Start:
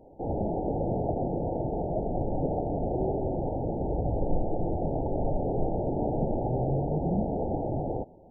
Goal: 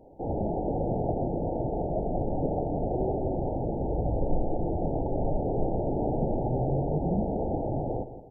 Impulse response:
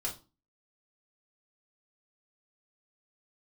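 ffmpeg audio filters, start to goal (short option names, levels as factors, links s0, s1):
-af "aecho=1:1:170|340|510|680:0.237|0.0877|0.0325|0.012"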